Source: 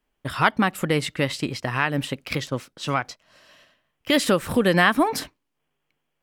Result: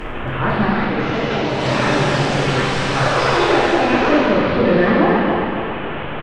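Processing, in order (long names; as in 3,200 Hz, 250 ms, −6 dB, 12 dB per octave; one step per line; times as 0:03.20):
linear delta modulator 16 kbit/s, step −23.5 dBFS
high-shelf EQ 2,100 Hz −9.5 dB
on a send: repeating echo 278 ms, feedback 48%, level −5.5 dB
on the sum: delay with pitch and tempo change per echo 499 ms, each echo +6 semitones, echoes 3
in parallel at −7.5 dB: sine wavefolder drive 6 dB, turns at −8 dBFS
0:00.66–0:01.63: on the sum: downward compressor, threshold −16 dBFS, peak gain reduction 6 dB
reverb whose tail is shaped and stops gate 460 ms falling, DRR −6 dB
level −6.5 dB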